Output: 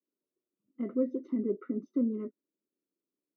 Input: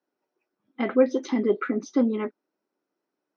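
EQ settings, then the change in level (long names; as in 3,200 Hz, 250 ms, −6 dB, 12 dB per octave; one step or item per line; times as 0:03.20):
moving average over 54 samples
high-pass filter 150 Hz
low-shelf EQ 210 Hz +5 dB
−6.5 dB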